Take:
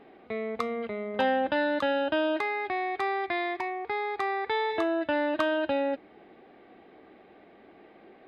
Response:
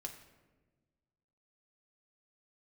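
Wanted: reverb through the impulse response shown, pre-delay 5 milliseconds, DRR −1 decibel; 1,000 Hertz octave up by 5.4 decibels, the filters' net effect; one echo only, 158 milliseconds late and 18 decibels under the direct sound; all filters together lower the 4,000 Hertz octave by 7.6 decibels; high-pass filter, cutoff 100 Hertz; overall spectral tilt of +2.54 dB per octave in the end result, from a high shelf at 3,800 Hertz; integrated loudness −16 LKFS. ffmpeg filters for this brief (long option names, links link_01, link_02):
-filter_complex "[0:a]highpass=100,equalizer=frequency=1000:width_type=o:gain=8,highshelf=frequency=3800:gain=-5,equalizer=frequency=4000:width_type=o:gain=-8.5,aecho=1:1:158:0.126,asplit=2[link_01][link_02];[1:a]atrim=start_sample=2205,adelay=5[link_03];[link_02][link_03]afir=irnorm=-1:irlink=0,volume=4dB[link_04];[link_01][link_04]amix=inputs=2:normalize=0,volume=6.5dB"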